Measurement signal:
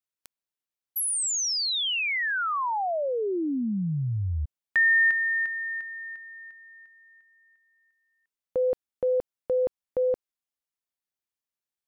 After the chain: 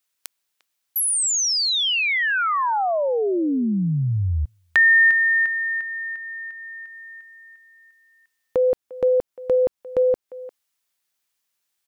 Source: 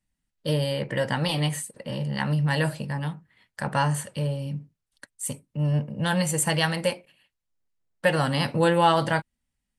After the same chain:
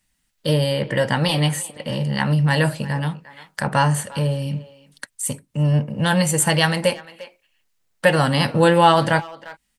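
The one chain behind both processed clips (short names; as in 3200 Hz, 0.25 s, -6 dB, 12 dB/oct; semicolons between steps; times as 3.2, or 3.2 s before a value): speakerphone echo 0.35 s, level -19 dB; mismatched tape noise reduction encoder only; gain +6 dB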